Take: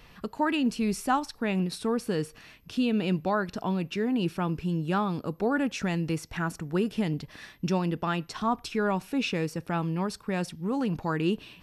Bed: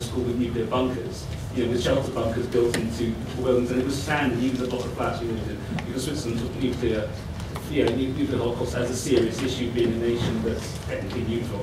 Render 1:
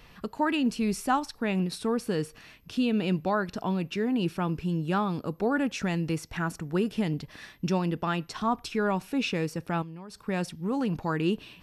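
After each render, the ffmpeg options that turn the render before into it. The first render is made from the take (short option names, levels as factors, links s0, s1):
-filter_complex "[0:a]asettb=1/sr,asplit=3[s0][s1][s2];[s0]atrim=end=9.824[s3];[s1]atrim=start=9.82:end=10.22,asetpts=PTS-STARTPTS,afade=t=in:d=0.004:c=qsin,afade=t=out:st=0.396:d=0.004:c=qsin,acompressor=threshold=0.00891:ratio=4:attack=3.2:release=140:knee=1:detection=peak[s4];[s2]atrim=start=10.216[s5];[s3][s4]acrossfade=d=0.004:c1=hsin:c2=qsin[s6];[s6][s5]acrossfade=d=0.004:c1=qsin:c2=hsin"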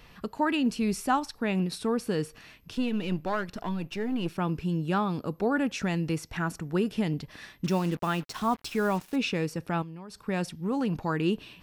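-filter_complex "[0:a]asettb=1/sr,asplit=3[s0][s1][s2];[s0]atrim=end=2.734[s3];[s1]atrim=start=2.73:end=4.38,asetpts=PTS-STARTPTS,afade=t=in:d=0.004:c=qsin,afade=t=out:st=1.646:d=0.004:c=qsin,aeval=exprs='if(lt(val(0),0),0.447*val(0),val(0))':c=same[s4];[s2]atrim=start=4.376[s5];[s3][s4]acrossfade=d=0.004:c1=hsin:c2=qsin[s6];[s6][s5]acrossfade=d=0.004:c1=qsin:c2=hsin,asettb=1/sr,asplit=3[s7][s8][s9];[s7]atrim=end=7.644[s10];[s8]atrim=start=7.64:end=9.16,asetpts=PTS-STARTPTS,afade=t=in:d=0.004:c=qsin,afade=t=out:st=1.516:d=0.004:c=qsin,acrusher=bits=6:mix=0:aa=0.5[s11];[s9]atrim=start=9.156[s12];[s10][s11]acrossfade=d=0.004:c1=hsin:c2=qsin[s13];[s13][s12]acrossfade=d=0.004:c1=qsin:c2=hsin"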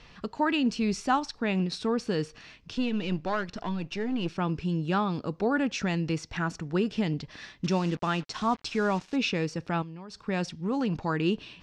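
-af "lowpass=f=6300:w=0.5412,lowpass=f=6300:w=1.3066,highshelf=f=4200:g=6"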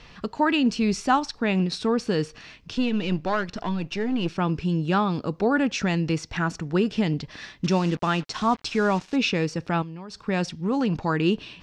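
-af "volume=1.68"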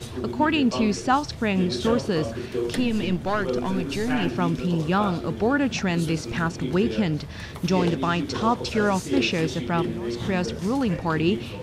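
-filter_complex "[1:a]volume=0.531[s0];[0:a][s0]amix=inputs=2:normalize=0"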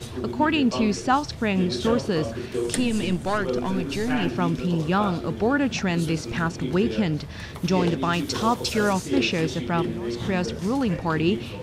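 -filter_complex "[0:a]asettb=1/sr,asplit=3[s0][s1][s2];[s0]atrim=end=2.544[s3];[s1]atrim=start=2.54:end=3.38,asetpts=PTS-STARTPTS,afade=t=in:d=0.004:c=qsin,afade=t=out:st=0.836:d=0.004:c=qsin,equalizer=f=8600:w=1.4:g=13[s4];[s2]atrim=start=3.376[s5];[s3][s4]acrossfade=d=0.004:c1=hsin:c2=qsin[s6];[s6][s5]acrossfade=d=0.004:c1=qsin:c2=hsin,asettb=1/sr,asplit=3[s7][s8][s9];[s7]atrim=end=8.134[s10];[s8]atrim=start=8.13:end=8.93,asetpts=PTS-STARTPTS,afade=t=in:d=0.004:c=qsin,afade=t=out:st=0.796:d=0.004:c=qsin,aemphasis=mode=production:type=50fm[s11];[s9]atrim=start=8.926[s12];[s10][s11]acrossfade=d=0.004:c1=hsin:c2=qsin[s13];[s13][s12]acrossfade=d=0.004:c1=qsin:c2=hsin"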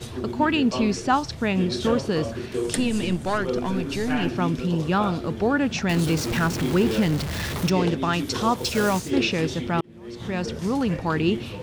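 -filter_complex "[0:a]asettb=1/sr,asplit=3[s0][s1][s2];[s0]atrim=end=5.894[s3];[s1]atrim=start=5.89:end=7.7,asetpts=PTS-STARTPTS,afade=t=in:d=0.004:c=qsin,afade=t=out:st=1.806:d=0.004:c=qsin,aeval=exprs='val(0)+0.5*0.0501*sgn(val(0))':c=same[s4];[s2]atrim=start=7.696[s5];[s3][s4]acrossfade=d=0.004:c1=hsin:c2=qsin[s6];[s6][s5]acrossfade=d=0.004:c1=qsin:c2=hsin,asplit=3[s7][s8][s9];[s7]afade=t=out:st=8.57:d=0.02[s10];[s8]acrusher=bits=3:mode=log:mix=0:aa=0.000001,afade=t=in:st=8.57:d=0.02,afade=t=out:st=9.09:d=0.02[s11];[s9]afade=t=in:st=9.09:d=0.02[s12];[s10][s11][s12]amix=inputs=3:normalize=0,asplit=2[s13][s14];[s13]atrim=end=9.81,asetpts=PTS-STARTPTS,afade=t=out:st=9.806:d=0.004:c=hsin[s15];[s14]atrim=start=9.81,asetpts=PTS-STARTPTS,afade=t=in:d=0.77[s16];[s15][s16]concat=n=2:v=0:a=1"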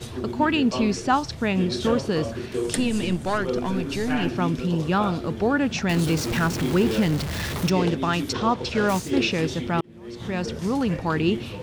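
-filter_complex "[0:a]asplit=3[s0][s1][s2];[s0]afade=t=out:st=8.32:d=0.02[s3];[s1]lowpass=3900,afade=t=in:st=8.32:d=0.02,afade=t=out:st=8.88:d=0.02[s4];[s2]afade=t=in:st=8.88:d=0.02[s5];[s3][s4][s5]amix=inputs=3:normalize=0"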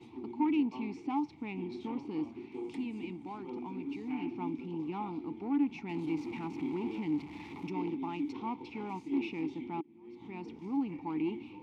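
-filter_complex "[0:a]aeval=exprs='(tanh(7.08*val(0)+0.4)-tanh(0.4))/7.08':c=same,asplit=3[s0][s1][s2];[s0]bandpass=f=300:t=q:w=8,volume=1[s3];[s1]bandpass=f=870:t=q:w=8,volume=0.501[s4];[s2]bandpass=f=2240:t=q:w=8,volume=0.355[s5];[s3][s4][s5]amix=inputs=3:normalize=0"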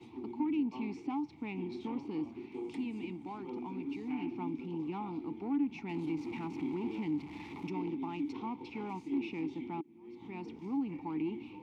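-filter_complex "[0:a]acrossover=split=290[s0][s1];[s1]acompressor=threshold=0.0126:ratio=6[s2];[s0][s2]amix=inputs=2:normalize=0"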